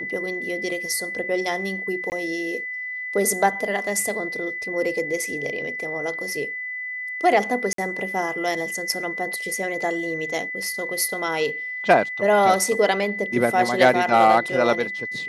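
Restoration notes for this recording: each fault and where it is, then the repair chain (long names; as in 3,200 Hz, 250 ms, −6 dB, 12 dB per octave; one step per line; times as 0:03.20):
whistle 2,000 Hz −28 dBFS
0:02.10–0:02.12: drop-out 19 ms
0:07.73–0:07.78: drop-out 53 ms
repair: notch filter 2,000 Hz, Q 30
repair the gap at 0:02.10, 19 ms
repair the gap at 0:07.73, 53 ms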